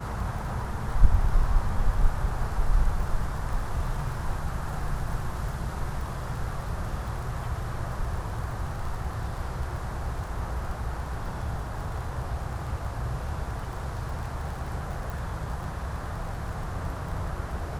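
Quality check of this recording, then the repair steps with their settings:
crackle 24/s -35 dBFS
15.1 pop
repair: de-click

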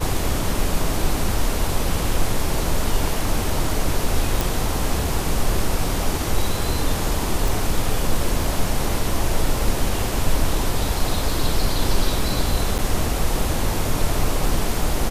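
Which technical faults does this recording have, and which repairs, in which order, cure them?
4.41 pop
7.48 pop
12.78–12.79 gap 7.9 ms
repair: de-click; interpolate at 12.78, 7.9 ms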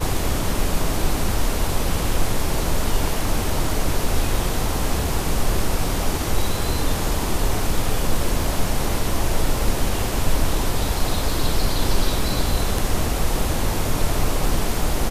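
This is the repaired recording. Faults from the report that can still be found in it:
none

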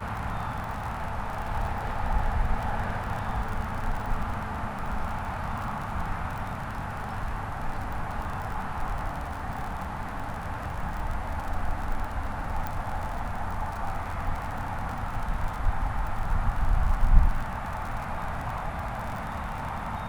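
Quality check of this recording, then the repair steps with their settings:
crackle 46/s -32 dBFS
12.67 pop -18 dBFS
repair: de-click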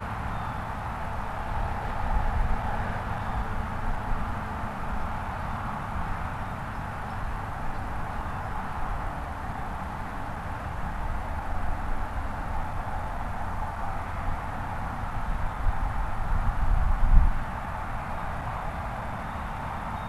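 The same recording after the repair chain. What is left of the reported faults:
none

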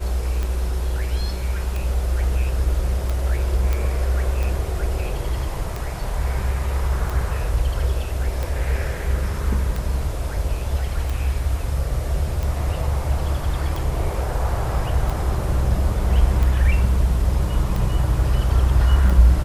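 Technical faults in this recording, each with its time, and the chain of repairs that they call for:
tick 45 rpm
3.73 pop -10 dBFS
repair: de-click

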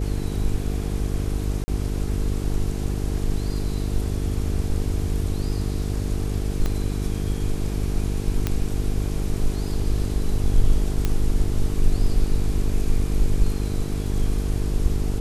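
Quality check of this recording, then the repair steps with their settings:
buzz 50 Hz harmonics 9 -26 dBFS
1.64–1.68 gap 40 ms
6.66 pop -12 dBFS
8.47 pop -9 dBFS
11.05 pop -9 dBFS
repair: de-click; de-hum 50 Hz, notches 9; interpolate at 1.64, 40 ms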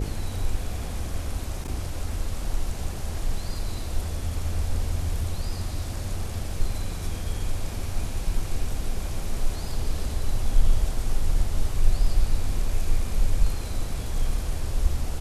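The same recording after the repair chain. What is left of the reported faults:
6.66 pop
8.47 pop

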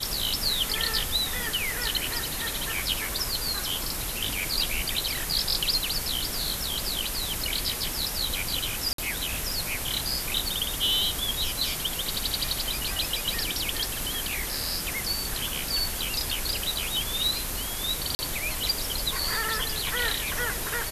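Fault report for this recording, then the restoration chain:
8.93–8.98 gap 53 ms
18.15–18.19 gap 40 ms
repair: interpolate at 8.93, 53 ms; interpolate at 18.15, 40 ms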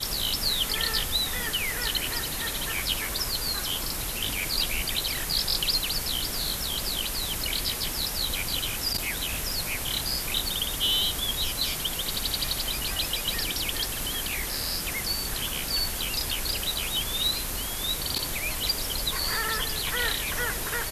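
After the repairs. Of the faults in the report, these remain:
none

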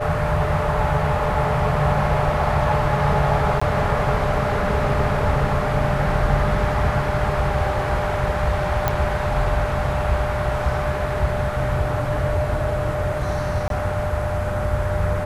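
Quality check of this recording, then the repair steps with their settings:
tone 600 Hz -26 dBFS
3.6–3.62 gap 15 ms
8.88 pop -6 dBFS
13.68–13.7 gap 22 ms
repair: de-click; notch 600 Hz, Q 30; interpolate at 3.6, 15 ms; interpolate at 13.68, 22 ms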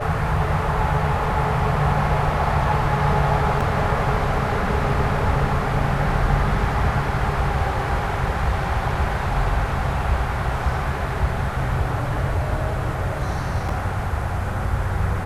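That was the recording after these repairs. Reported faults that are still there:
none

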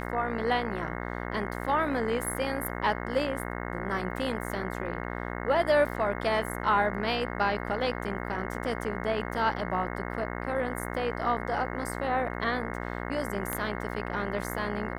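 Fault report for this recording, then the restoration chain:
buzz 60 Hz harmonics 36 -35 dBFS
13.53 pop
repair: de-click; de-hum 60 Hz, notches 36

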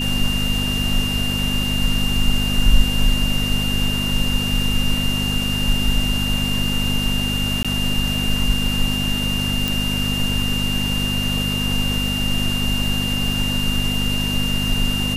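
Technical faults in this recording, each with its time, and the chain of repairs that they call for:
crackle 39/s -27 dBFS
hum 50 Hz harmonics 5 -24 dBFS
tone 2800 Hz -23 dBFS
7.63–7.65 gap 16 ms
9.68 pop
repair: de-click; de-hum 50 Hz, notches 5; notch 2800 Hz, Q 30; interpolate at 7.63, 16 ms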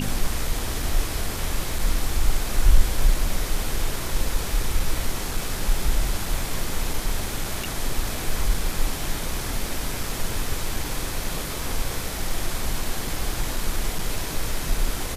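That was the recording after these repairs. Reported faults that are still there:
9.68 pop

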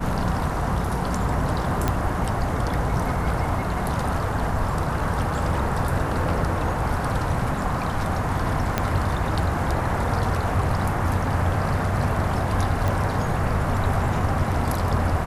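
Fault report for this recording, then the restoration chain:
1.88 pop -8 dBFS
8.78 pop -6 dBFS
12.88 pop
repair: de-click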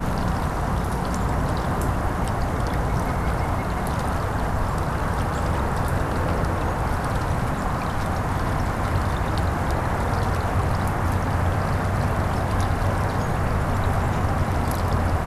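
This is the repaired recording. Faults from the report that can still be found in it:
8.78 pop

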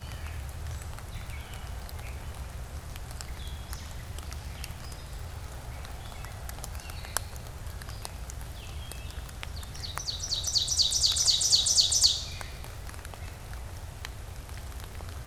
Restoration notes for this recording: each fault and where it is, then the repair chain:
crackle 45/s -38 dBFS
9.29 pop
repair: de-click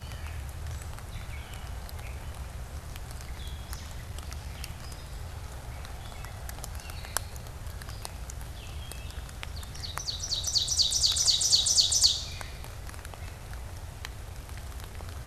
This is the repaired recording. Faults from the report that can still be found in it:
none

